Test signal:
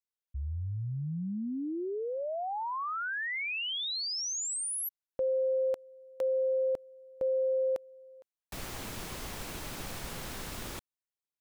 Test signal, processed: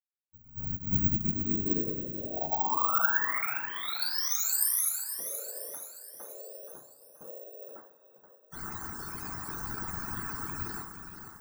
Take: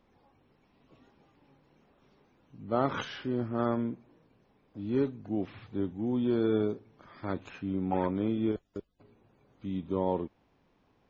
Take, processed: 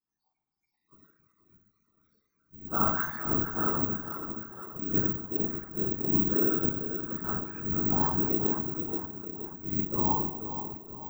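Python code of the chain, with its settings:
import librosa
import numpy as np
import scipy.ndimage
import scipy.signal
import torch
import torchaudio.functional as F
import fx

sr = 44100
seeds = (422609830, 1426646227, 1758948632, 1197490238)

p1 = fx.noise_reduce_blind(x, sr, reduce_db=27)
p2 = fx.low_shelf(p1, sr, hz=87.0, db=-6.5)
p3 = fx.rider(p2, sr, range_db=3, speed_s=2.0)
p4 = p2 + (p3 * 10.0 ** (-2.5 / 20.0))
p5 = fx.fixed_phaser(p4, sr, hz=1200.0, stages=4)
p6 = fx.rev_double_slope(p5, sr, seeds[0], early_s=0.42, late_s=2.3, knee_db=-18, drr_db=-7.5)
p7 = fx.quant_float(p6, sr, bits=2)
p8 = fx.spec_topn(p7, sr, count=64)
p9 = fx.echo_feedback(p8, sr, ms=476, feedback_pct=52, wet_db=-9)
p10 = fx.whisperise(p9, sr, seeds[1])
p11 = (np.kron(p10[::2], np.eye(2)[0]) * 2)[:len(p10)]
y = p11 * 10.0 ** (-8.0 / 20.0)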